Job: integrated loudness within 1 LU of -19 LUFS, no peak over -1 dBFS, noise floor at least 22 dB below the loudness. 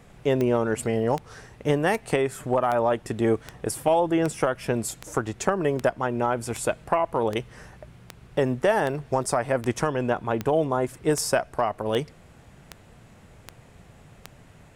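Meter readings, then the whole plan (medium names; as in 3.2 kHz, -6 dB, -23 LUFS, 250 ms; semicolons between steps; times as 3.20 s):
clicks found 19; loudness -25.5 LUFS; peak level -6.5 dBFS; loudness target -19.0 LUFS
-> de-click; trim +6.5 dB; peak limiter -1 dBFS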